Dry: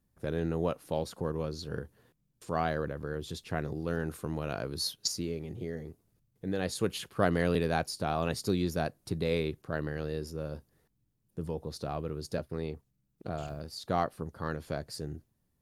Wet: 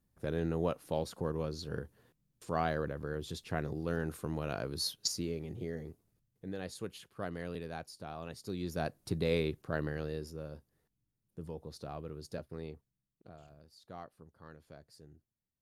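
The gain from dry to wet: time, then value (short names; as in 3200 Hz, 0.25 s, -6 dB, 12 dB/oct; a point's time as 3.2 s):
5.9 s -2 dB
7.04 s -13 dB
8.4 s -13 dB
8.94 s -1 dB
9.84 s -1 dB
10.56 s -7.5 dB
12.7 s -7.5 dB
13.4 s -18 dB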